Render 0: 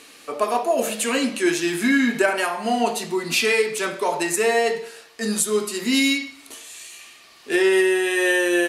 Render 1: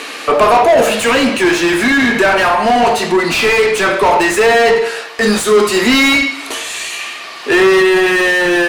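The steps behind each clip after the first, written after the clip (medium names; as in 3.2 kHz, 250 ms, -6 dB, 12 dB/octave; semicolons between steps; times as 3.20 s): overdrive pedal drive 28 dB, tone 1.7 kHz, clips at -4.5 dBFS; gain riding within 4 dB 2 s; trim +2.5 dB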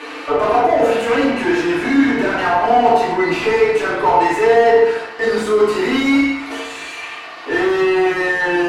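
overdrive pedal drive 14 dB, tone 1 kHz, clips at -2 dBFS; FDN reverb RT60 0.65 s, low-frequency decay 1.3×, high-frequency decay 0.7×, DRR -6.5 dB; trim -12.5 dB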